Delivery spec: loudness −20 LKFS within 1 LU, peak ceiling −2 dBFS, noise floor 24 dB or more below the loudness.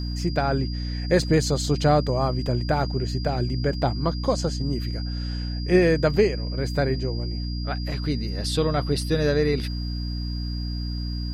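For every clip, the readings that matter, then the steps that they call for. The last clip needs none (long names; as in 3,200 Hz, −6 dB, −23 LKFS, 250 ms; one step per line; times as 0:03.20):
mains hum 60 Hz; hum harmonics up to 300 Hz; level of the hum −26 dBFS; interfering tone 4,800 Hz; level of the tone −38 dBFS; integrated loudness −24.5 LKFS; sample peak −7.5 dBFS; target loudness −20.0 LKFS
→ mains-hum notches 60/120/180/240/300 Hz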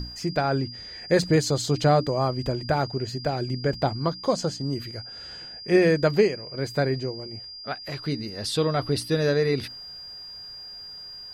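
mains hum none found; interfering tone 4,800 Hz; level of the tone −38 dBFS
→ notch filter 4,800 Hz, Q 30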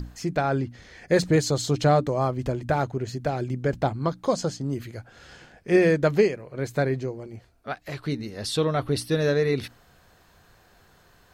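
interfering tone none found; integrated loudness −25.0 LKFS; sample peak −9.0 dBFS; target loudness −20.0 LKFS
→ level +5 dB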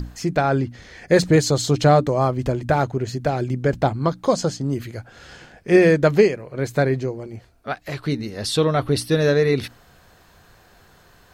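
integrated loudness −20.0 LKFS; sample peak −4.0 dBFS; background noise floor −53 dBFS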